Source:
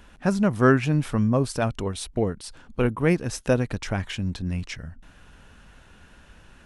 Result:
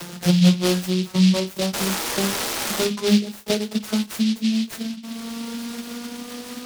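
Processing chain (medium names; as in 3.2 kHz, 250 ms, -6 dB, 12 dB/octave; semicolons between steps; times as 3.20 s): vocoder on a note that slides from F3, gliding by +6 st; upward compressor, threshold -23 dBFS; painted sound noise, 1.73–2.84 s, 200–2700 Hz -33 dBFS; on a send at -2 dB: tilt EQ +2.5 dB/octave + reverberation RT60 0.20 s, pre-delay 4 ms; on the sum: de-esser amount 95%; delay time shaken by noise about 3.6 kHz, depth 0.15 ms; trim +4 dB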